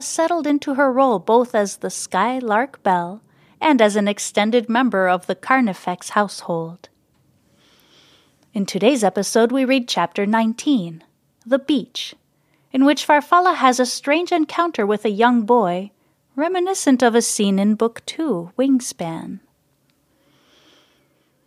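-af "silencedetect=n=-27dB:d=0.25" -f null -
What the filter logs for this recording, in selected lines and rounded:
silence_start: 3.15
silence_end: 3.62 | silence_duration: 0.47
silence_start: 6.85
silence_end: 8.56 | silence_duration: 1.71
silence_start: 10.91
silence_end: 11.51 | silence_duration: 0.60
silence_start: 12.10
silence_end: 12.74 | silence_duration: 0.65
silence_start: 15.85
silence_end: 16.38 | silence_duration: 0.53
silence_start: 19.35
silence_end: 21.46 | silence_duration: 2.11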